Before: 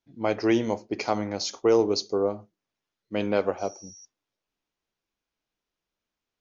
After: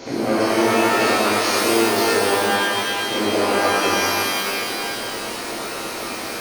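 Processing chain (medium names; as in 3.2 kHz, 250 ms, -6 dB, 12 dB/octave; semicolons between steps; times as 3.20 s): spectral levelling over time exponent 0.4; compression 4:1, threshold -32 dBFS, peak gain reduction 15.5 dB; pitch-shifted reverb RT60 2.2 s, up +12 st, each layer -2 dB, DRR -8.5 dB; trim +4.5 dB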